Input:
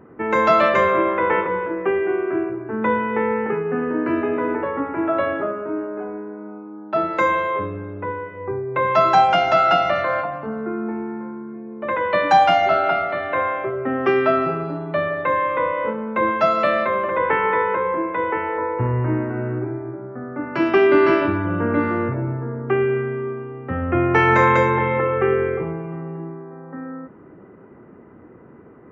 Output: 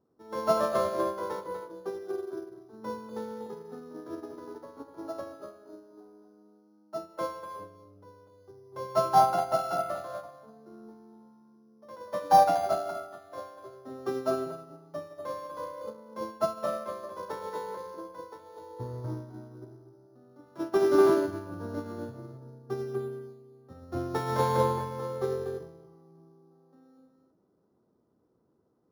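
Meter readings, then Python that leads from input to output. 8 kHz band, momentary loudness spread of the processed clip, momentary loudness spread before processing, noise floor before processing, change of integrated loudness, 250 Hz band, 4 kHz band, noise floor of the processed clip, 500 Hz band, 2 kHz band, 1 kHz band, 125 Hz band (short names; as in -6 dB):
n/a, 22 LU, 15 LU, -45 dBFS, -10.5 dB, -14.0 dB, -13.0 dB, -70 dBFS, -11.0 dB, -22.5 dB, -11.0 dB, -13.5 dB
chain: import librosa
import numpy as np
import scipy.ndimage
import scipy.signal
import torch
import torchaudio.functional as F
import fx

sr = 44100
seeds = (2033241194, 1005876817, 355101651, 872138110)

y = np.r_[np.sort(x[:len(x) // 8 * 8].reshape(-1, 8), axis=1).ravel(), x[len(x) // 8 * 8:]]
y = fx.curve_eq(y, sr, hz=(360.0, 650.0, 1300.0, 2300.0), db=(0, 2, -2, -13))
y = y + 10.0 ** (-6.0 / 20.0) * np.pad(y, (int(245 * sr / 1000.0), 0))[:len(y)]
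y = fx.upward_expand(y, sr, threshold_db=-25.0, expansion=2.5)
y = F.gain(torch.from_numpy(y), -4.5).numpy()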